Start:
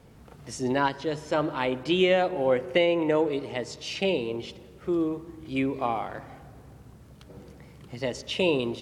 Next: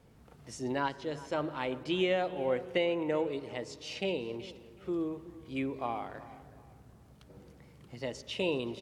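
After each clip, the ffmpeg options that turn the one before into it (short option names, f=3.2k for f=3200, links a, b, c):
-filter_complex "[0:a]asplit=2[a][b];[b]adelay=374,lowpass=f=3.7k:p=1,volume=-18dB,asplit=2[c][d];[d]adelay=374,lowpass=f=3.7k:p=1,volume=0.35,asplit=2[e][f];[f]adelay=374,lowpass=f=3.7k:p=1,volume=0.35[g];[a][c][e][g]amix=inputs=4:normalize=0,volume=-7.5dB"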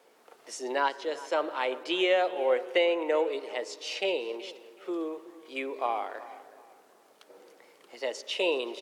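-af "highpass=f=390:w=0.5412,highpass=f=390:w=1.3066,volume=6dB"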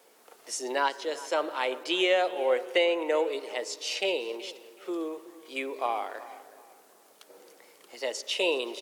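-af "highshelf=f=5.5k:g=11"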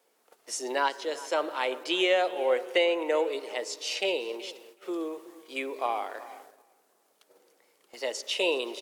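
-af "agate=range=-10dB:threshold=-50dB:ratio=16:detection=peak"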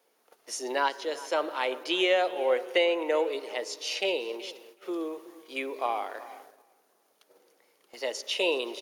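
-af "bandreject=f=7.8k:w=5.2"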